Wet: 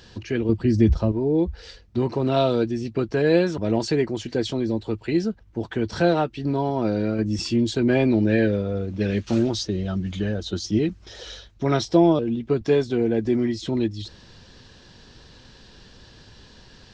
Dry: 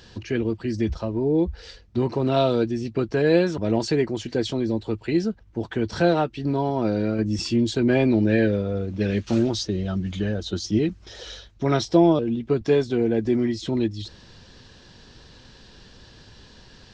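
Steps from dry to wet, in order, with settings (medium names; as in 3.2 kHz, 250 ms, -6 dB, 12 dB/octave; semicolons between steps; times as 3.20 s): 0.49–1.12 s: bass shelf 380 Hz +10 dB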